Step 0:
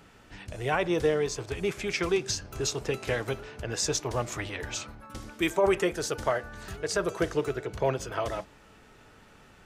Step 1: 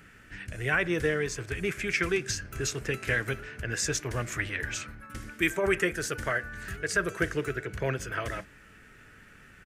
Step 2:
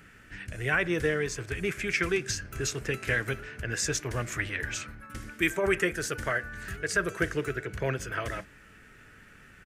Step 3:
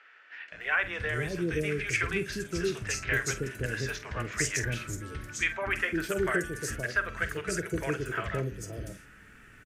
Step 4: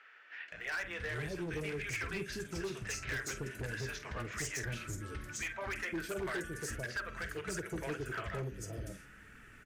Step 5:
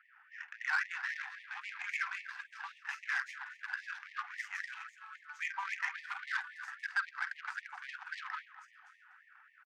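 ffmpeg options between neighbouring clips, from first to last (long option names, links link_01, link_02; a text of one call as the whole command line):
ffmpeg -i in.wav -af "firequalizer=gain_entry='entry(130,0);entry(870,-12);entry(1600,7);entry(3700,-6);entry(9200,1)':delay=0.05:min_phase=1,volume=1.5dB" out.wav
ffmpeg -i in.wav -af anull out.wav
ffmpeg -i in.wav -filter_complex "[0:a]asplit=2[link_01][link_02];[link_02]adelay=47,volume=-12.5dB[link_03];[link_01][link_03]amix=inputs=2:normalize=0,acrossover=split=550|4500[link_04][link_05][link_06];[link_04]adelay=520[link_07];[link_06]adelay=610[link_08];[link_07][link_05][link_08]amix=inputs=3:normalize=0" out.wav
ffmpeg -i in.wav -filter_complex "[0:a]asplit=2[link_01][link_02];[link_02]acompressor=threshold=-37dB:ratio=6,volume=3dB[link_03];[link_01][link_03]amix=inputs=2:normalize=0,asoftclip=type=hard:threshold=-23.5dB,flanger=delay=0.5:depth=5.7:regen=-56:speed=1.6:shape=triangular,volume=-6dB" out.wav
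ffmpeg -i in.wav -af "aecho=1:1:244:0.282,adynamicsmooth=sensitivity=3:basefreq=820,afftfilt=real='re*gte(b*sr/1024,720*pow(1800/720,0.5+0.5*sin(2*PI*3.7*pts/sr)))':imag='im*gte(b*sr/1024,720*pow(1800/720,0.5+0.5*sin(2*PI*3.7*pts/sr)))':win_size=1024:overlap=0.75,volume=10dB" out.wav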